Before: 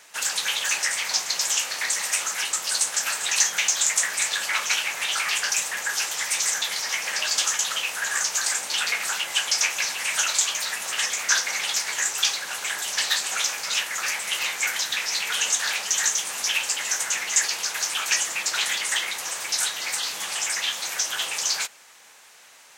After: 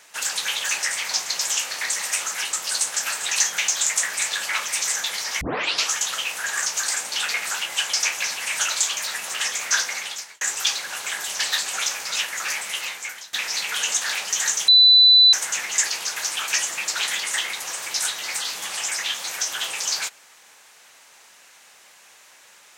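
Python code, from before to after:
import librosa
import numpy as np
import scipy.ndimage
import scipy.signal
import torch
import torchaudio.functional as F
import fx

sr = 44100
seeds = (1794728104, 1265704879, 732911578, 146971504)

y = fx.edit(x, sr, fx.cut(start_s=4.68, length_s=1.58),
    fx.tape_start(start_s=6.99, length_s=0.5),
    fx.fade_out_span(start_s=11.42, length_s=0.57),
    fx.fade_out_to(start_s=14.18, length_s=0.73, floor_db=-20.5),
    fx.bleep(start_s=16.26, length_s=0.65, hz=3990.0, db=-9.0), tone=tone)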